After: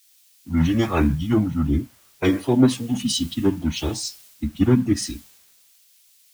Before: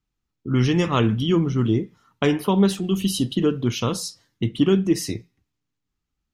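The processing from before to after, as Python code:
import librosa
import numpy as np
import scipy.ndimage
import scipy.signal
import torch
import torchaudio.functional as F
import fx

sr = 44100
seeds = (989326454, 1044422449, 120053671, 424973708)

y = fx.pitch_keep_formants(x, sr, semitones=-7.5)
y = fx.quant_dither(y, sr, seeds[0], bits=8, dither='triangular')
y = fx.band_widen(y, sr, depth_pct=70)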